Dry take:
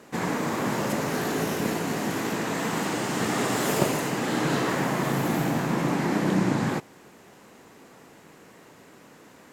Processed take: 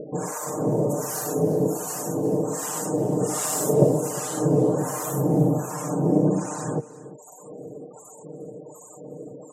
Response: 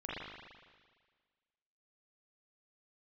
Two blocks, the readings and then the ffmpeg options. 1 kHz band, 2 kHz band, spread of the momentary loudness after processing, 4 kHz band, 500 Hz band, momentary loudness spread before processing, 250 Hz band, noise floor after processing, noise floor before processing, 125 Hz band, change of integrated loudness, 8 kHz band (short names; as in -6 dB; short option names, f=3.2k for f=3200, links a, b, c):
-3.0 dB, -12.5 dB, 21 LU, -9.0 dB, +5.5 dB, 4 LU, +1.5 dB, -46 dBFS, -52 dBFS, +4.5 dB, +2.5 dB, +6.0 dB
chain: -filter_complex "[0:a]highpass=94,highshelf=f=5.2k:g=10,aecho=1:1:6.6:0.64,bandreject=f=225.9:t=h:w=4,bandreject=f=451.8:t=h:w=4,bandreject=f=677.7:t=h:w=4,bandreject=f=903.6:t=h:w=4,bandreject=f=1.1295k:t=h:w=4,bandreject=f=1.3554k:t=h:w=4,acrossover=split=810[a][b];[a]aeval=exprs='val(0)*(1-1/2+1/2*cos(2*PI*1.3*n/s))':c=same[c];[b]aeval=exprs='val(0)*(1-1/2-1/2*cos(2*PI*1.3*n/s))':c=same[d];[c][d]amix=inputs=2:normalize=0,equalizer=f=125:t=o:w=1:g=7,equalizer=f=500:t=o:w=1:g=11,equalizer=f=2k:t=o:w=1:g=-11,equalizer=f=4k:t=o:w=1:g=-6,equalizer=f=8k:t=o:w=1:g=5,acompressor=mode=upward:threshold=-29dB:ratio=2.5,afftfilt=real='re*gte(hypot(re,im),0.0158)':imag='im*gte(hypot(re,im),0.0158)':win_size=1024:overlap=0.75,aecho=1:1:354:0.133"